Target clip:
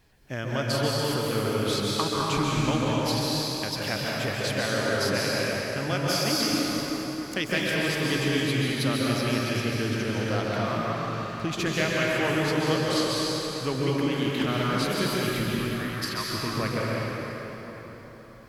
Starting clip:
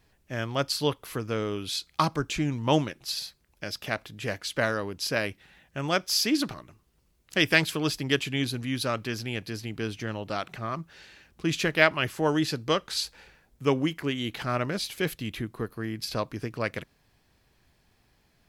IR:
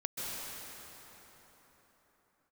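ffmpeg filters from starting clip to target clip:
-filter_complex "[0:a]asettb=1/sr,asplit=3[link_01][link_02][link_03];[link_01]atrim=end=15.474[link_04];[link_02]atrim=start=15.47:end=16.27,asetpts=PTS-STARTPTS,afade=type=in:duration=0.004:curve=qsin,afade=type=out:start_time=0.796:duration=0.004:curve=qsin,highpass=frequency=960:width=0.5412,highpass=frequency=960:width=1.3066[link_05];[link_03]atrim=start=16.266[link_06];[link_04][link_05]acrossfade=duration=0.004:curve1=hsin:curve2=qsin[link_07];[link_07][link_06]acrossfade=duration=0.004:curve1=qsin:curve2=hsin,acompressor=threshold=-33dB:ratio=2.5[link_08];[1:a]atrim=start_sample=2205[link_09];[link_08][link_09]afir=irnorm=-1:irlink=0,volume=5dB"

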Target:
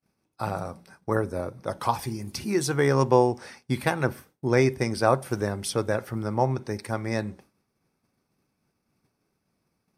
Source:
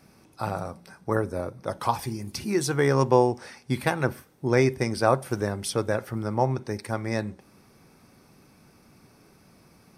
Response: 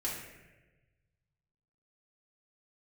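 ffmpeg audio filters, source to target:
-af "agate=range=-33dB:threshold=-43dB:ratio=3:detection=peak"

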